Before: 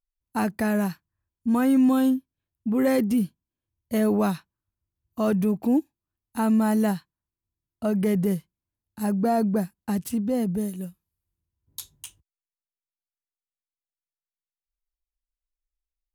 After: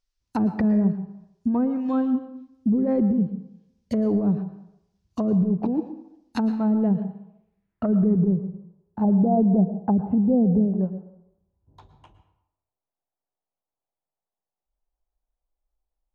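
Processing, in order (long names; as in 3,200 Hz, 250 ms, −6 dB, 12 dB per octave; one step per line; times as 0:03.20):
compressor whose output falls as the input rises −23 dBFS, ratio −0.5
treble cut that deepens with the level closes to 350 Hz, closed at −21 dBFS
brickwall limiter −20.5 dBFS, peak gain reduction 6.5 dB
low-pass filter sweep 5,500 Hz → 770 Hz, 0:06.23–0:09.02
convolution reverb RT60 0.80 s, pre-delay 102 ms, DRR 11 dB
level +5.5 dB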